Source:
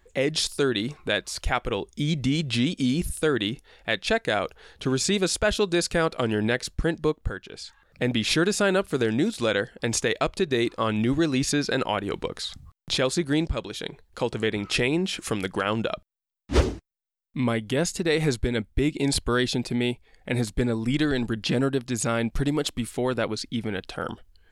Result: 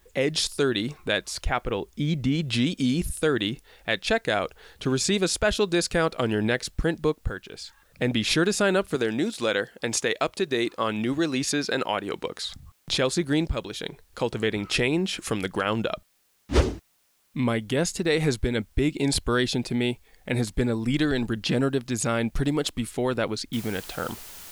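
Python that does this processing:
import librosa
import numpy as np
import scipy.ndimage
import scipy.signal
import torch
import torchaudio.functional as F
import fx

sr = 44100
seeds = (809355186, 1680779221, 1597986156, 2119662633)

y = fx.high_shelf(x, sr, hz=4400.0, db=-11.5, at=(1.44, 2.45))
y = fx.highpass(y, sr, hz=240.0, slope=6, at=(8.95, 12.43))
y = fx.noise_floor_step(y, sr, seeds[0], at_s=23.53, before_db=-67, after_db=-43, tilt_db=0.0)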